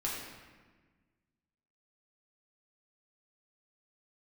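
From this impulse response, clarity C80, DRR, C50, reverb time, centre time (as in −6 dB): 3.0 dB, −5.5 dB, 1.0 dB, 1.4 s, 74 ms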